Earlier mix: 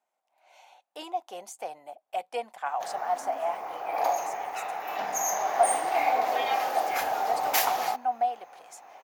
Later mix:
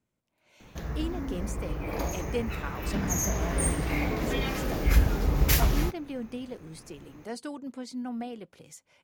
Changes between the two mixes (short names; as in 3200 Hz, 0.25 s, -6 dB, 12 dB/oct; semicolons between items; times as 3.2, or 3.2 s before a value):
background: entry -2.05 s; master: remove resonant high-pass 750 Hz, resonance Q 8.3